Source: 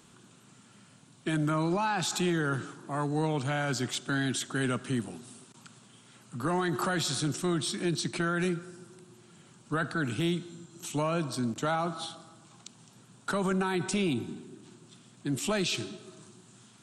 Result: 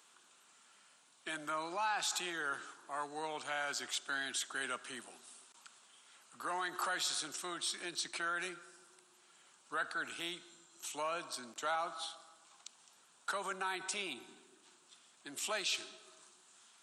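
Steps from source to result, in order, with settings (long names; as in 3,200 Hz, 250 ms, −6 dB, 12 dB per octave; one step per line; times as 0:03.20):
high-pass filter 740 Hz 12 dB per octave
level −4 dB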